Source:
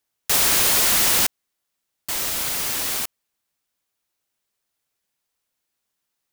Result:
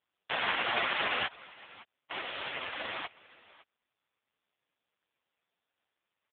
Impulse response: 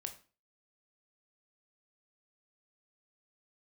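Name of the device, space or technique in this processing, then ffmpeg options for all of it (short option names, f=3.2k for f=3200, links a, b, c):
satellite phone: -filter_complex "[0:a]asplit=3[a][b][c];[a]afade=t=out:st=2.22:d=0.02[d];[b]equalizer=f=1.1k:t=o:w=1.3:g=-2,afade=t=in:st=2.22:d=0.02,afade=t=out:st=2.79:d=0.02[e];[c]afade=t=in:st=2.79:d=0.02[f];[d][e][f]amix=inputs=3:normalize=0,highpass=360,lowpass=3.4k,aecho=1:1:561:0.0841,volume=2.5dB" -ar 8000 -c:a libopencore_amrnb -b:a 4750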